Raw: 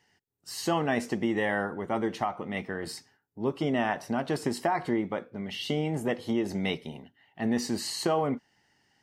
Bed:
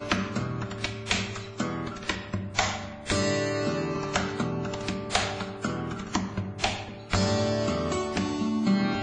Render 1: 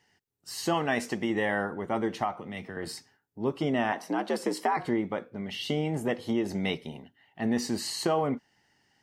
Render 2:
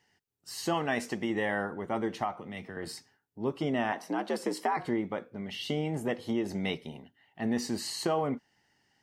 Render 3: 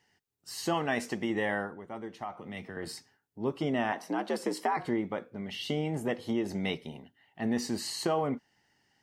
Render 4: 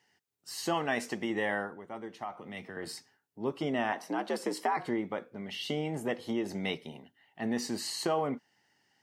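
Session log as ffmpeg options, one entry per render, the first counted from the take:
-filter_complex "[0:a]asettb=1/sr,asplit=3[s0][s1][s2];[s0]atrim=end=0.744[s3];[s1]atrim=start=0.74:end=1.3,asetpts=PTS-STARTPTS,afade=t=in:d=0.004:c=qsin,afade=t=out:st=0.556:d=0.004:c=qsin,tiltshelf=f=750:g=-3[s4];[s2]atrim=start=1.296[s5];[s3][s4]acrossfade=d=0.004:c1=hsin:c2=qsin[s6];[s6][s5]acrossfade=d=0.004:c1=qsin:c2=hsin,asettb=1/sr,asplit=3[s7][s8][s9];[s7]atrim=end=2.364[s10];[s8]atrim=start=2.36:end=2.77,asetpts=PTS-STARTPTS,afade=t=in:d=0.004:c=qsin,afade=t=out:st=0.406:d=0.004:c=qsin,acrossover=split=140|3000[s11][s12][s13];[s12]acompressor=threshold=0.0126:ratio=3:attack=3.2:release=140:knee=2.83:detection=peak[s14];[s11][s14][s13]amix=inputs=3:normalize=0[s15];[s9]atrim=start=2.766[s16];[s10][s15]acrossfade=d=0.004:c1=hsin:c2=qsin[s17];[s17][s16]acrossfade=d=0.004:c1=qsin:c2=hsin,asettb=1/sr,asplit=3[s18][s19][s20];[s18]atrim=end=3.924[s21];[s19]atrim=start=3.92:end=4.77,asetpts=PTS-STARTPTS,afade=t=in:d=0.004:c=qsin,afade=t=out:st=0.846:d=0.004:c=qsin,afreqshift=69[s22];[s20]atrim=start=4.766[s23];[s21][s22]acrossfade=d=0.004:c1=hsin:c2=qsin[s24];[s24][s23]acrossfade=d=0.004:c1=qsin:c2=hsin"
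-af "volume=0.75"
-filter_complex "[0:a]asplit=3[s0][s1][s2];[s0]atrim=end=1.82,asetpts=PTS-STARTPTS,afade=t=out:st=1.53:d=0.29:silence=0.354813[s3];[s1]atrim=start=1.82:end=2.2,asetpts=PTS-STARTPTS,volume=0.355[s4];[s2]atrim=start=2.2,asetpts=PTS-STARTPTS,afade=t=in:d=0.29:silence=0.354813[s5];[s3][s4][s5]concat=n=3:v=0:a=1"
-af "highpass=90,lowshelf=f=250:g=-4.5"

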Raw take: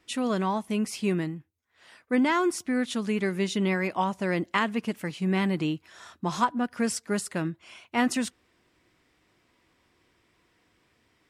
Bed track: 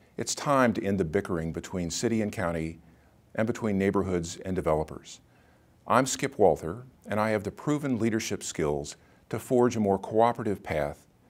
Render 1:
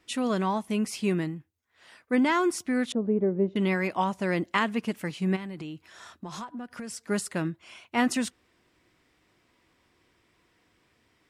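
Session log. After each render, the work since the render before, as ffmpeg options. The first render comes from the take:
-filter_complex "[0:a]asettb=1/sr,asplit=3[s0][s1][s2];[s0]atrim=end=2.924[s3];[s1]atrim=start=2.92:end=3.56,asetpts=PTS-STARTPTS,afade=t=in:d=0.004:c=qsin,afade=t=out:st=0.636:d=0.004:c=qsin,lowpass=f=540:t=q:w=1.7[s4];[s2]atrim=start=3.556[s5];[s3][s4]acrossfade=d=0.004:c1=hsin:c2=qsin[s6];[s6][s5]acrossfade=d=0.004:c1=qsin:c2=hsin,asplit=3[s7][s8][s9];[s7]afade=t=out:st=5.35:d=0.02[s10];[s8]acompressor=threshold=0.02:ratio=12:attack=3.2:release=140:knee=1:detection=peak,afade=t=in:st=5.35:d=0.02,afade=t=out:st=7.01:d=0.02[s11];[s9]afade=t=in:st=7.01:d=0.02[s12];[s10][s11][s12]amix=inputs=3:normalize=0"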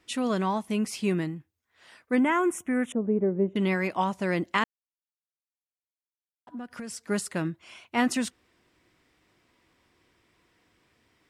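-filter_complex "[0:a]asettb=1/sr,asplit=3[s0][s1][s2];[s0]atrim=end=2.194[s3];[s1]atrim=start=2.19:end=3.55,asetpts=PTS-STARTPTS,afade=t=in:d=0.004:c=qsin,afade=t=out:st=1.356:d=0.004:c=qsin,asuperstop=centerf=4500:order=4:qfactor=1.1[s4];[s2]atrim=start=3.546[s5];[s3][s4]acrossfade=d=0.004:c1=hsin:c2=qsin[s6];[s6][s5]acrossfade=d=0.004:c1=qsin:c2=hsin,asplit=3[s7][s8][s9];[s7]atrim=end=4.64,asetpts=PTS-STARTPTS,afade=t=out:st=4.636:d=0.004:c=hsin[s10];[s8]atrim=start=4.64:end=6.47,asetpts=PTS-STARTPTS,volume=0[s11];[s9]atrim=start=6.47,asetpts=PTS-STARTPTS,afade=t=in:d=0.004:c=hsin[s12];[s10][s11][s12]concat=n=3:v=0:a=1"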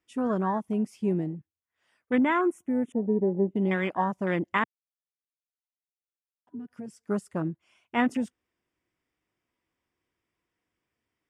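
-af "afwtdn=0.0224,equalizer=f=4100:w=6.9:g=-11"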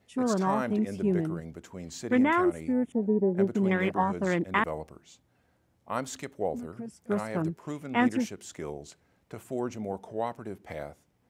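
-filter_complex "[1:a]volume=0.335[s0];[0:a][s0]amix=inputs=2:normalize=0"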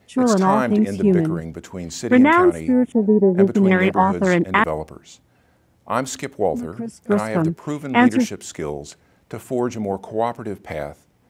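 -af "volume=3.35,alimiter=limit=0.708:level=0:latency=1"

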